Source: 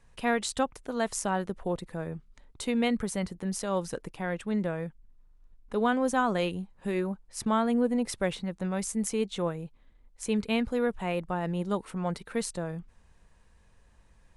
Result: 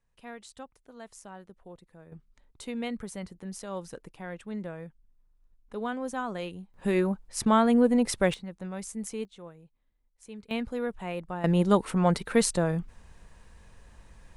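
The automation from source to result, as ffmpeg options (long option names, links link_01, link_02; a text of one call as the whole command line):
ffmpeg -i in.wav -af "asetnsamples=nb_out_samples=441:pad=0,asendcmd='2.12 volume volume -7dB;6.74 volume volume 4.5dB;8.34 volume volume -6dB;9.25 volume volume -15.5dB;10.51 volume volume -4dB;11.44 volume volume 8dB',volume=-16.5dB" out.wav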